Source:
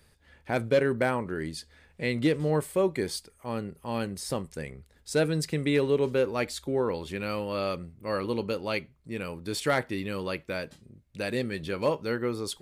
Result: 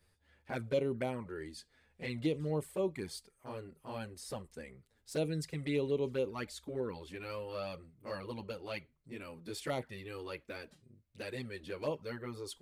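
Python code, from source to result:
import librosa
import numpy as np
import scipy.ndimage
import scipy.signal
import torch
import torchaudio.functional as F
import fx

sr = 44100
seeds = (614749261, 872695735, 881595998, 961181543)

y = fx.env_flanger(x, sr, rest_ms=11.2, full_db=-21.0)
y = y * 10.0 ** (-7.5 / 20.0)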